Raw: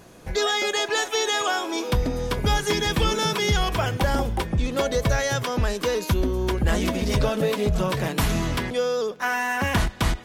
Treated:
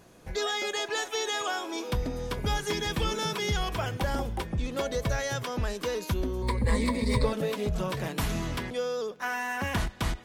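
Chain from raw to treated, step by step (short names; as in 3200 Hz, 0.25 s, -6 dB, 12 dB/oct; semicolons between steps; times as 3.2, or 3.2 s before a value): 6.42–7.33 ripple EQ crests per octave 0.96, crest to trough 16 dB; gain -7 dB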